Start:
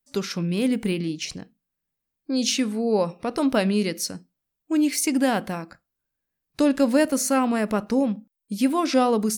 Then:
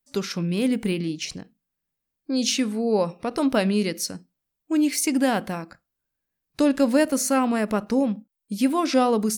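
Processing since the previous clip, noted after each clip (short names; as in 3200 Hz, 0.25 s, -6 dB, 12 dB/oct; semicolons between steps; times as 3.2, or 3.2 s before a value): ending taper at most 510 dB/s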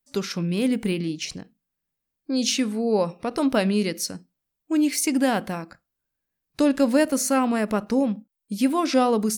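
nothing audible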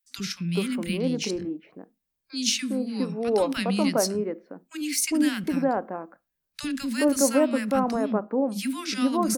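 three bands offset in time highs, lows, mids 40/410 ms, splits 240/1400 Hz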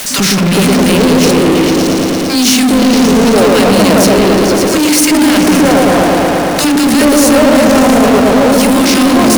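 per-bin compression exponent 0.6; repeats that get brighter 0.113 s, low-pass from 750 Hz, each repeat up 1 oct, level 0 dB; power-law curve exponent 0.35; gain +2.5 dB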